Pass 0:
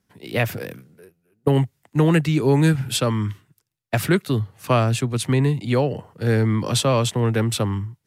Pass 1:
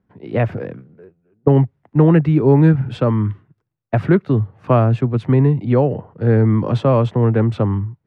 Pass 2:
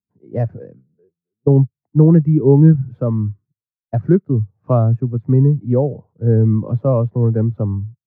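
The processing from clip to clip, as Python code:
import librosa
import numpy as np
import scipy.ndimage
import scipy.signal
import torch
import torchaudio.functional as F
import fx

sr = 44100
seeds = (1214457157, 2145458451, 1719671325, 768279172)

y1 = scipy.signal.sosfilt(scipy.signal.bessel(2, 1000.0, 'lowpass', norm='mag', fs=sr, output='sos'), x)
y1 = y1 * 10.0 ** (5.5 / 20.0)
y2 = scipy.signal.medfilt(y1, 15)
y2 = fx.spectral_expand(y2, sr, expansion=1.5)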